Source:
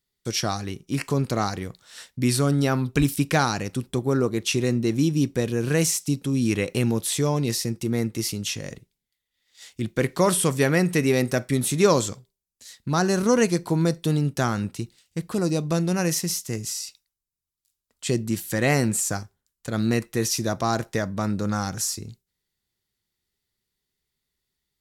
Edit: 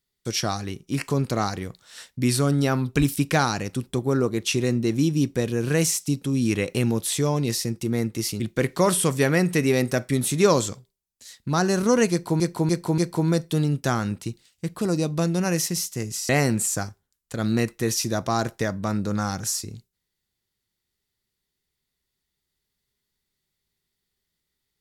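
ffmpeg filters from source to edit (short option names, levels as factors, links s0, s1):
-filter_complex "[0:a]asplit=6[s0][s1][s2][s3][s4][s5];[s0]atrim=end=8.402[s6];[s1]atrim=start=9.798:end=13.802[s7];[s2]atrim=start=13.508:end=13.802[s8];[s3]atrim=start=13.508:end=13.802[s9];[s4]atrim=start=13.508:end=16.822[s10];[s5]atrim=start=18.628[s11];[s6][s7]acrossfade=d=0.004:c1=hsin:c2=hsin[s12];[s12][s8]acrossfade=d=0.004:c1=hsin:c2=hsin[s13];[s13][s9]acrossfade=d=0.004:c1=hsin:c2=hsin[s14];[s14][s10]acrossfade=d=0.004:c1=hsin:c2=hsin[s15];[s15][s11]acrossfade=d=0.004:c1=hsin:c2=hsin"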